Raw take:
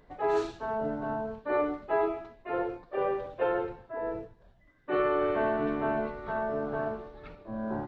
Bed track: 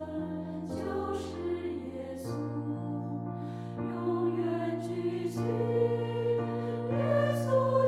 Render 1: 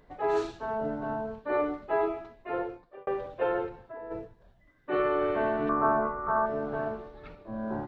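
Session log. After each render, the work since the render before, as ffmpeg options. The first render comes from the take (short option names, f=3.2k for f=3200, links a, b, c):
-filter_complex "[0:a]asplit=3[a][b][c];[a]afade=t=out:st=3.68:d=0.02[d];[b]acompressor=threshold=-38dB:ratio=6:attack=3.2:release=140:knee=1:detection=peak,afade=t=in:st=3.68:d=0.02,afade=t=out:st=4.1:d=0.02[e];[c]afade=t=in:st=4.1:d=0.02[f];[d][e][f]amix=inputs=3:normalize=0,asettb=1/sr,asplit=3[g][h][i];[g]atrim=end=5.694[j];[h]atrim=start=5.69:end=6.46,asetpts=PTS-STARTPTS,afade=t=in:d=0.004:c=qsin,afade=t=out:st=0.766:d=0.004:c=qsin,lowpass=f=1.2k:t=q:w=5.4[k];[i]atrim=start=6.456[l];[j][k]acrossfade=d=0.004:c1=hsin:c2=qsin[m];[m][l]acrossfade=d=0.004:c1=qsin:c2=hsin,asplit=2[n][o];[n]atrim=end=3.07,asetpts=PTS-STARTPTS,afade=t=out:st=2.52:d=0.55[p];[o]atrim=start=3.07,asetpts=PTS-STARTPTS,afade=t=in:d=0.004:c=hsin[q];[p][q]concat=n=2:v=0:a=1"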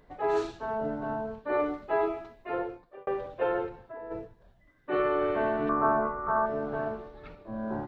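-filter_complex "[0:a]asettb=1/sr,asplit=3[a][b][c];[a]atrim=end=1.594[d];[b]atrim=start=1.59:end=2.55,asetpts=PTS-STARTPTS,afade=t=in:d=0.004:c=qsin,afade=t=out:st=0.956:d=0.004:c=qsin,highshelf=f=4.2k:g=5[e];[c]atrim=start=2.546[f];[d][e]acrossfade=d=0.004:c1=hsin:c2=qsin[g];[g][f]acrossfade=d=0.004:c1=qsin:c2=hsin"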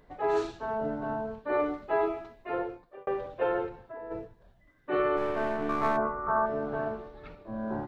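-filter_complex "[0:a]asplit=3[a][b][c];[a]afade=t=out:st=5.16:d=0.02[d];[b]aeval=exprs='if(lt(val(0),0),0.447*val(0),val(0))':c=same,afade=t=in:st=5.16:d=0.02,afade=t=out:st=5.96:d=0.02[e];[c]afade=t=in:st=5.96:d=0.02[f];[d][e][f]amix=inputs=3:normalize=0"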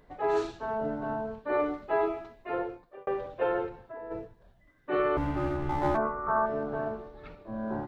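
-filter_complex "[0:a]asettb=1/sr,asplit=3[a][b][c];[a]atrim=end=5.174[d];[b]atrim=start=5.17:end=5.95,asetpts=PTS-STARTPTS,afade=t=in:d=0.004:c=qsin,afade=t=out:st=0.776:d=0.004:c=qsin,afreqshift=-300[e];[c]atrim=start=5.946[f];[d][e]acrossfade=d=0.004:c1=hsin:c2=qsin[g];[g][f]acrossfade=d=0.004:c1=qsin:c2=hsin,asettb=1/sr,asplit=3[h][i][j];[h]atrim=end=6.634[k];[i]atrim=start=6.63:end=7.19,asetpts=PTS-STARTPTS,afade=t=in:d=0.004:c=qsin,afade=t=out:st=0.556:d=0.004:c=qsin,equalizer=f=2.7k:t=o:w=2:g=-3.5[l];[j]atrim=start=7.186[m];[k][l]acrossfade=d=0.004:c1=hsin:c2=qsin[n];[n][m]acrossfade=d=0.004:c1=qsin:c2=hsin"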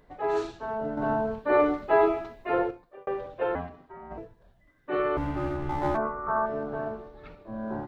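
-filter_complex "[0:a]asettb=1/sr,asplit=3[a][b][c];[a]atrim=end=0.974[d];[b]atrim=start=0.97:end=2.71,asetpts=PTS-STARTPTS,afade=t=in:d=0.004:c=qsin,afade=t=out:st=1.736:d=0.004:c=qsin,acontrast=62[e];[c]atrim=start=2.706[f];[d][e]acrossfade=d=0.004:c1=hsin:c2=qsin[g];[g][f]acrossfade=d=0.004:c1=qsin:c2=hsin,asettb=1/sr,asplit=3[h][i][j];[h]atrim=end=3.554[k];[i]atrim=start=3.55:end=4.18,asetpts=PTS-STARTPTS,afade=t=in:d=0.004:c=qsin,afade=t=out:st=0.626:d=0.004:c=qsin,aeval=exprs='val(0)*sin(2*PI*270*n/s)':c=same[l];[j]atrim=start=4.176[m];[k][l]acrossfade=d=0.004:c1=hsin:c2=qsin[n];[n][m]acrossfade=d=0.004:c1=qsin:c2=hsin"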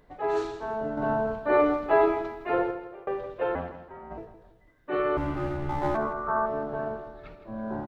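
-af "aecho=1:1:165|330|495|660:0.237|0.0877|0.0325|0.012"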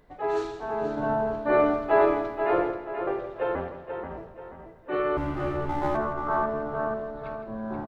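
-filter_complex "[0:a]asplit=2[a][b];[b]adelay=483,lowpass=f=4.6k:p=1,volume=-7dB,asplit=2[c][d];[d]adelay=483,lowpass=f=4.6k:p=1,volume=0.38,asplit=2[e][f];[f]adelay=483,lowpass=f=4.6k:p=1,volume=0.38,asplit=2[g][h];[h]adelay=483,lowpass=f=4.6k:p=1,volume=0.38[i];[a][c][e][g][i]amix=inputs=5:normalize=0"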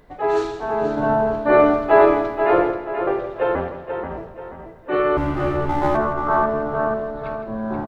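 -af "volume=7.5dB"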